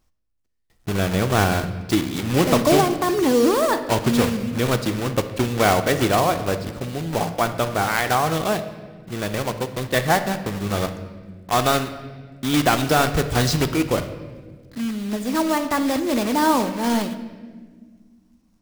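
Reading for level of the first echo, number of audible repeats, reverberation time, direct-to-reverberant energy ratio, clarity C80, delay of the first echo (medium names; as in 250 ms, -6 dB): no echo, no echo, 1.5 s, 8.5 dB, 12.5 dB, no echo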